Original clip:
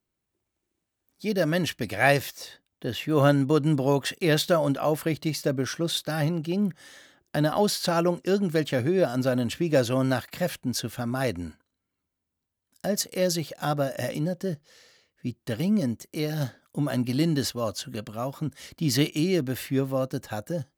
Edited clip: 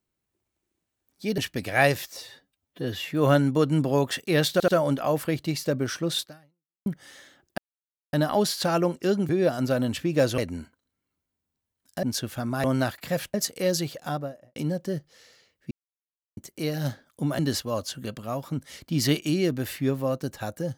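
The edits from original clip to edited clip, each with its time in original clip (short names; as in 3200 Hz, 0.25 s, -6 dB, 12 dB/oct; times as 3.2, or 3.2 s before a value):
1.38–1.63 cut
2.42–3.04 stretch 1.5×
4.46 stutter 0.08 s, 3 plays
6–6.64 fade out exponential
7.36 insert silence 0.55 s
8.52–8.85 cut
9.94–10.64 swap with 11.25–12.9
13.46–14.12 studio fade out
15.27–15.93 mute
16.95–17.29 cut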